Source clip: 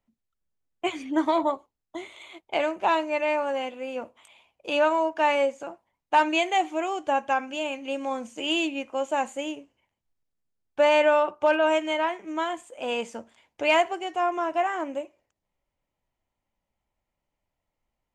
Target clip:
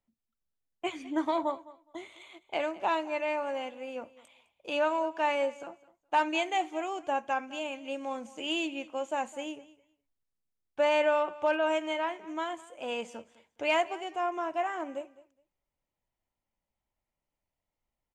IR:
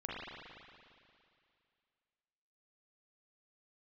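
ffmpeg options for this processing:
-af "aecho=1:1:208|416:0.106|0.018,volume=-6dB"

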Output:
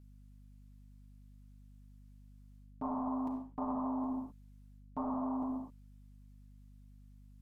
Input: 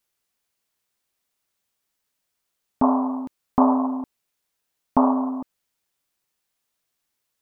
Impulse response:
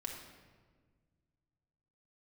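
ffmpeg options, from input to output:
-filter_complex "[1:a]atrim=start_sample=2205,afade=type=out:start_time=0.22:duration=0.01,atrim=end_sample=10143,asetrate=27783,aresample=44100[link_01];[0:a][link_01]afir=irnorm=-1:irlink=0,areverse,acompressor=threshold=-28dB:ratio=12,areverse,aeval=exprs='val(0)+0.00316*(sin(2*PI*50*n/s)+sin(2*PI*2*50*n/s)/2+sin(2*PI*3*50*n/s)/3+sin(2*PI*4*50*n/s)/4+sin(2*PI*5*50*n/s)/5)':channel_layout=same,volume=-5.5dB"

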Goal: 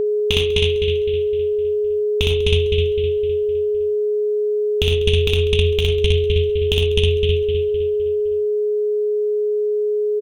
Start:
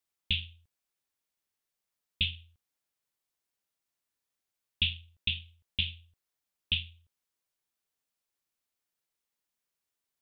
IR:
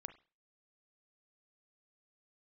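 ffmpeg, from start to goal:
-filter_complex "[0:a]asplit=2[link_01][link_02];[link_02]adelay=256,lowpass=frequency=3900:poles=1,volume=-6dB,asplit=2[link_03][link_04];[link_04]adelay=256,lowpass=frequency=3900:poles=1,volume=0.48,asplit=2[link_05][link_06];[link_06]adelay=256,lowpass=frequency=3900:poles=1,volume=0.48,asplit=2[link_07][link_08];[link_08]adelay=256,lowpass=frequency=3900:poles=1,volume=0.48,asplit=2[link_09][link_10];[link_10]adelay=256,lowpass=frequency=3900:poles=1,volume=0.48,asplit=2[link_11][link_12];[link_12]adelay=256,lowpass=frequency=3900:poles=1,volume=0.48[link_13];[link_03][link_05][link_07][link_09][link_11][link_13]amix=inputs=6:normalize=0[link_14];[link_01][link_14]amix=inputs=2:normalize=0,aeval=exprs='0.211*(cos(1*acos(clip(val(0)/0.211,-1,1)))-cos(1*PI/2))+0.015*(cos(7*acos(clip(val(0)/0.211,-1,1)))-cos(7*PI/2))':channel_layout=same,asubboost=boost=5.5:cutoff=150,acompressor=threshold=-35dB:ratio=16,asplit=2[link_15][link_16];[1:a]atrim=start_sample=2205,adelay=61[link_17];[link_16][link_17]afir=irnorm=-1:irlink=0,volume=4.5dB[link_18];[link_15][link_18]amix=inputs=2:normalize=0,aeval=exprs='val(0)+0.0126*sin(2*PI*420*n/s)':channel_layout=same,aecho=1:1:196|392|588:0.0841|0.0387|0.0178,alimiter=level_in=23dB:limit=-1dB:release=50:level=0:latency=1,volume=-1dB"

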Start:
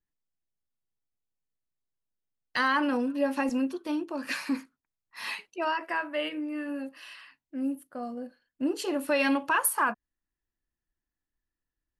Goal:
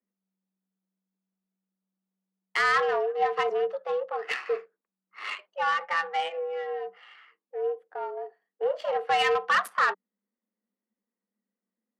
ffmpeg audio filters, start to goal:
ffmpeg -i in.wav -filter_complex "[0:a]adynamicsmooth=sensitivity=2.5:basefreq=1200,afreqshift=190,asplit=2[link_01][link_02];[link_02]highpass=frequency=720:poles=1,volume=10dB,asoftclip=type=tanh:threshold=-13dB[link_03];[link_01][link_03]amix=inputs=2:normalize=0,lowpass=frequency=5200:poles=1,volume=-6dB" out.wav

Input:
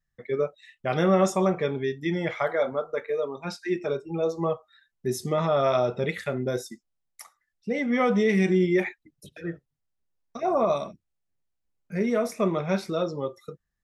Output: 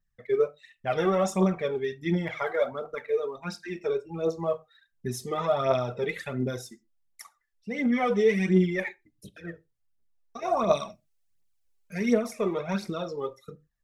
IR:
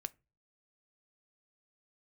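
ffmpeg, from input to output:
-filter_complex "[0:a]asettb=1/sr,asplit=3[link_01][link_02][link_03];[link_01]atrim=end=10.424[link_04];[link_02]atrim=start=10.42:end=12.14,asetpts=PTS-STARTPTS,afade=type=in:duration=0.004:curve=qsin,afade=type=out:start_time=1.716:duration=0.004:curve=qsin,highshelf=frequency=2000:gain=10[link_05];[link_03]atrim=start=12.136[link_06];[link_04][link_05]acrossfade=duration=0.004:curve1=hsin:curve2=qsin[link_07];[link_07][link_06]acrossfade=duration=0.004:curve1=qsin:curve2=hsin,aphaser=in_gain=1:out_gain=1:delay=2.7:decay=0.6:speed=1.4:type=triangular[link_08];[1:a]atrim=start_sample=2205,atrim=end_sample=6174[link_09];[link_08][link_09]afir=irnorm=-1:irlink=0,volume=-1.5dB"

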